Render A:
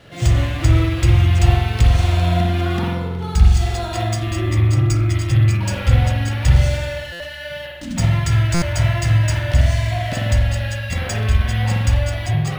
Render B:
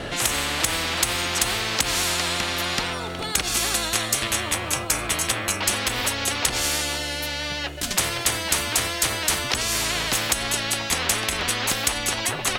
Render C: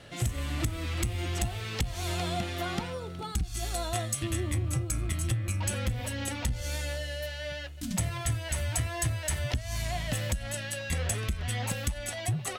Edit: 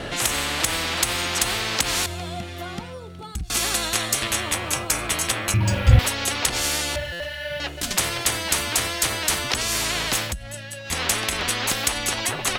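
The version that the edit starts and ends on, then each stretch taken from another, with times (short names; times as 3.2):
B
2.06–3.5 from C
5.54–5.99 from A
6.96–7.6 from A
10.27–10.92 from C, crossfade 0.16 s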